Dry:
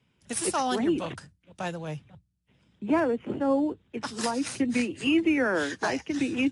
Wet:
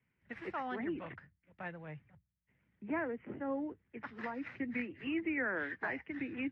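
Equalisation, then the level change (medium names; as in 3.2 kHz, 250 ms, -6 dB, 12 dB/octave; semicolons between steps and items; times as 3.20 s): four-pole ladder low-pass 2.2 kHz, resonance 65%; bass shelf 190 Hz +3.5 dB; -3.0 dB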